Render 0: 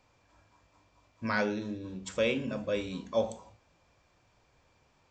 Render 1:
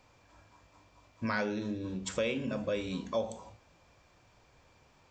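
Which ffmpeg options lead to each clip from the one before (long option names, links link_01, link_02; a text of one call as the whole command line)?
ffmpeg -i in.wav -af "acompressor=threshold=-36dB:ratio=2.5,volume=4dB" out.wav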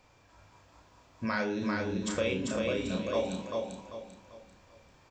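ffmpeg -i in.wav -filter_complex "[0:a]asplit=2[link_01][link_02];[link_02]adelay=32,volume=-5.5dB[link_03];[link_01][link_03]amix=inputs=2:normalize=0,aecho=1:1:393|786|1179|1572|1965:0.708|0.248|0.0867|0.0304|0.0106" out.wav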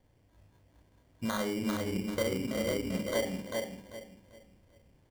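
ffmpeg -i in.wav -af "adynamicsmooth=sensitivity=1.5:basefreq=540,acrusher=samples=17:mix=1:aa=0.000001" out.wav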